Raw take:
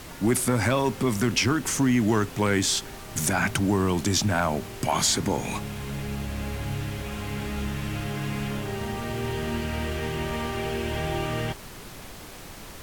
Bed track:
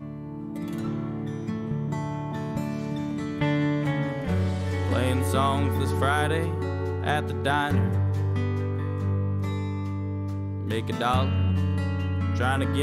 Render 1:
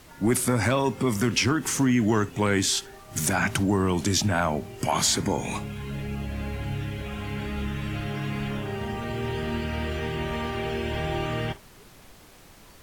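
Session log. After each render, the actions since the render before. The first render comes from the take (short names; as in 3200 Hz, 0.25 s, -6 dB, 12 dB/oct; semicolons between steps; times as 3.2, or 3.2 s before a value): noise print and reduce 9 dB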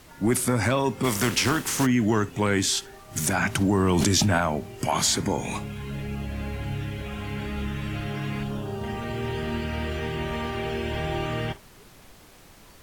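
1.03–1.85 spectral contrast lowered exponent 0.65; 3.61–4.38 fast leveller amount 100%; 8.43–8.84 bell 2100 Hz -14.5 dB 0.71 oct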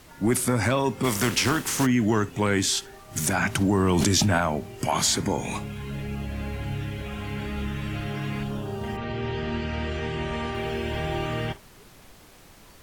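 8.96–10.53 LPF 4900 Hz -> 9900 Hz 24 dB/oct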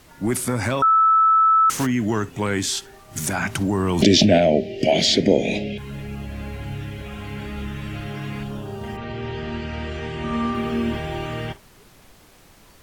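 0.82–1.7 bleep 1310 Hz -12 dBFS; 4.02–5.78 EQ curve 130 Hz 0 dB, 180 Hz +8 dB, 640 Hz +14 dB, 1100 Hz -28 dB, 1900 Hz +6 dB, 3100 Hz +11 dB, 5200 Hz +5 dB, 8800 Hz -14 dB; 10.23–10.96 small resonant body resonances 240/1200 Hz, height 11 dB -> 14 dB, ringing for 40 ms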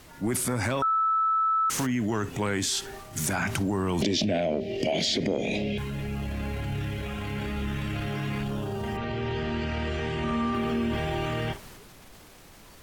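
transient shaper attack -4 dB, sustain +5 dB; compressor 5:1, threshold -24 dBFS, peak gain reduction 12 dB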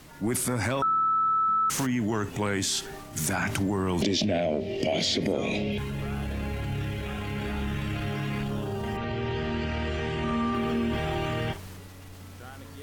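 add bed track -20 dB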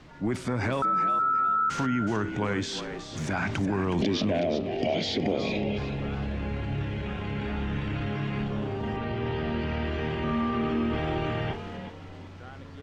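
air absorption 160 m; on a send: frequency-shifting echo 0.369 s, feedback 31%, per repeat +74 Hz, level -10 dB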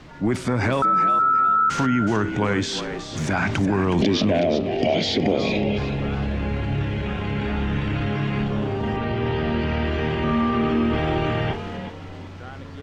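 gain +6.5 dB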